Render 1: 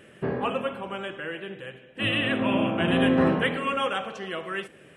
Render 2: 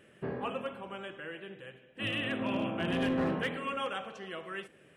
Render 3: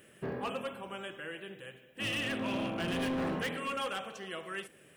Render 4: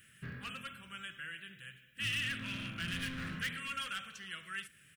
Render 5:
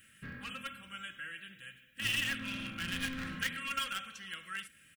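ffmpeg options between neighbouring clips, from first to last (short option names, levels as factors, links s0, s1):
-af "volume=6.68,asoftclip=hard,volume=0.15,volume=0.376"
-af "aemphasis=mode=production:type=50fm,volume=31.6,asoftclip=hard,volume=0.0316"
-af "firequalizer=gain_entry='entry(110,0);entry(360,-21);entry(820,-25);entry(1400,-1)':delay=0.05:min_phase=1,volume=1.12"
-filter_complex "[0:a]aecho=1:1:3.7:0.48,asplit=2[s0][s1];[s1]acrusher=bits=4:mix=0:aa=0.000001,volume=0.335[s2];[s0][s2]amix=inputs=2:normalize=0"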